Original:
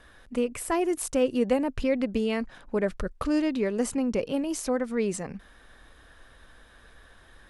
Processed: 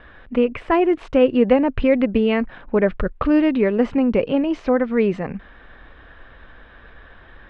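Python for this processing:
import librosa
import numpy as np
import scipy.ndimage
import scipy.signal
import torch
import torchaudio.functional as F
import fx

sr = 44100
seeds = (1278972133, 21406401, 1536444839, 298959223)

y = scipy.signal.sosfilt(scipy.signal.butter(4, 3000.0, 'lowpass', fs=sr, output='sos'), x)
y = y * librosa.db_to_amplitude(9.0)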